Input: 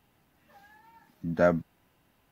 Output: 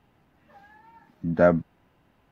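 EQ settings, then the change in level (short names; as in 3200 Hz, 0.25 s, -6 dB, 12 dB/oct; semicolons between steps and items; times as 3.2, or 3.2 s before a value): LPF 1900 Hz 6 dB/oct; +5.0 dB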